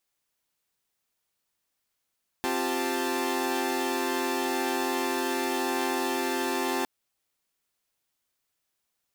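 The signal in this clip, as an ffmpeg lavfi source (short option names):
-f lavfi -i "aevalsrc='0.0335*((2*mod(261.63*t,1)-1)+(2*mod(349.23*t,1)-1)+(2*mod(392*t,1)-1)+(2*mod(880*t,1)-1))':d=4.41:s=44100"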